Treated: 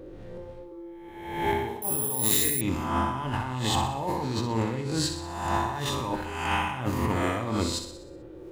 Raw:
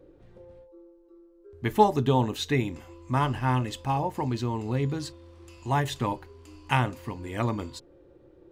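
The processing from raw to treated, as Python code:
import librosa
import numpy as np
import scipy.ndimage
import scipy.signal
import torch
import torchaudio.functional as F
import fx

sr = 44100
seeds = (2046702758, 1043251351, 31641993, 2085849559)

y = fx.spec_swells(x, sr, rise_s=0.98)
y = fx.over_compress(y, sr, threshold_db=-32.0, ratio=-1.0)
y = fx.echo_feedback(y, sr, ms=62, feedback_pct=55, wet_db=-8.5)
y = fx.resample_bad(y, sr, factor=4, down='none', up='zero_stuff', at=(1.82, 2.61))
y = y * librosa.db_to_amplitude(1.5)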